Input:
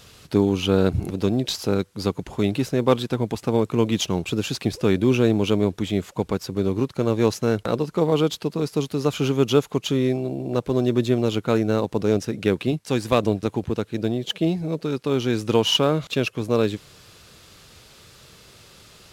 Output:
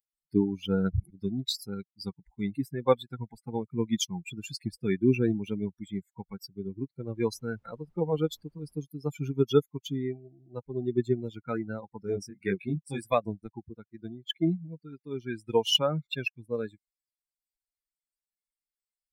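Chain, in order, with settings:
spectral dynamics exaggerated over time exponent 3
0:07.14–0:08.77: background noise brown −70 dBFS
0:12.02–0:13.04: double-tracking delay 21 ms −2 dB

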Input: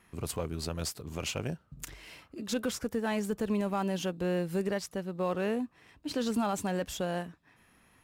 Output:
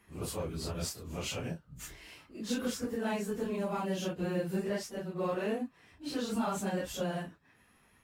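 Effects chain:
random phases in long frames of 100 ms
level −2 dB

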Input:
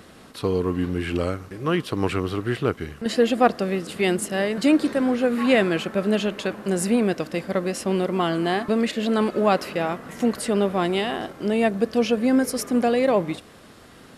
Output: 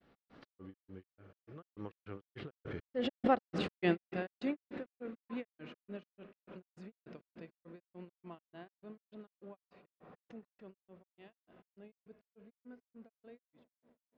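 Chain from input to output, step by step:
source passing by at 0:03.63, 20 m/s, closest 1.7 metres
in parallel at 0 dB: downward compressor, threshold −51 dBFS, peak gain reduction 23.5 dB
on the sum: high-frequency loss of the air 240 metres
spring reverb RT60 3.9 s, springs 57 ms, chirp 45 ms, DRR 13 dB
granular cloud 156 ms, grains 3.4 per second, spray 100 ms, pitch spread up and down by 0 semitones
background raised ahead of every attack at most 33 dB per second
level +2.5 dB

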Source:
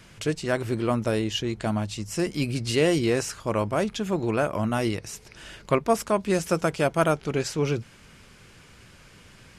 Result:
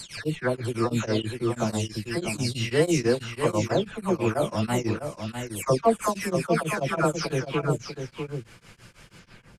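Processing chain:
every frequency bin delayed by itself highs early, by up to 397 ms
on a send: single-tap delay 646 ms −7 dB
on the sum: tremolo along a rectified sine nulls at 6.1 Hz
level +3 dB

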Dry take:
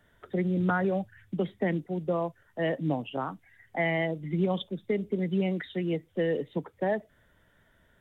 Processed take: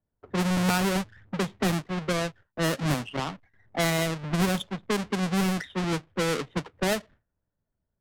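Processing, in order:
each half-wave held at its own peak
noise gate with hold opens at −50 dBFS
parametric band 450 Hz −3.5 dB 2.1 octaves
low-pass that shuts in the quiet parts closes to 820 Hz, open at −21.5 dBFS

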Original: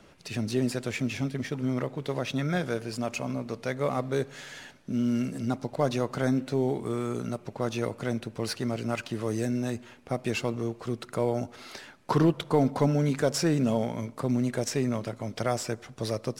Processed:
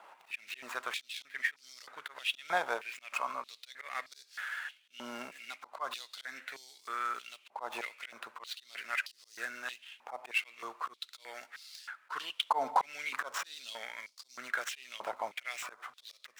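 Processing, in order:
running median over 9 samples
volume swells 157 ms
high-pass on a step sequencer 3.2 Hz 880–4,800 Hz

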